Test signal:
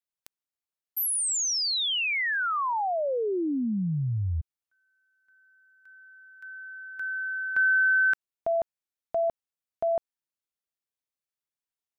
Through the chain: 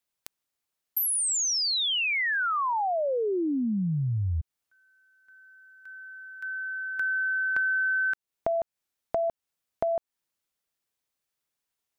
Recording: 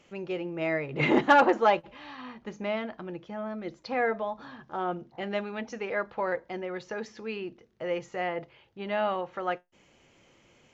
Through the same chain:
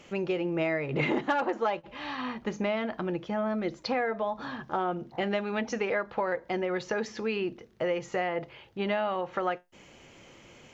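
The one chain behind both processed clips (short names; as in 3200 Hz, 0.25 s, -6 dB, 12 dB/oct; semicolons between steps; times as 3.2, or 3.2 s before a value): compressor 6:1, threshold -34 dBFS; gain +8 dB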